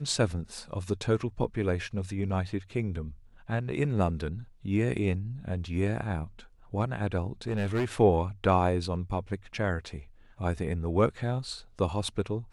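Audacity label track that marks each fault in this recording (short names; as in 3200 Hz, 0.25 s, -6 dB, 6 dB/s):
7.480000	7.850000	clipped -24 dBFS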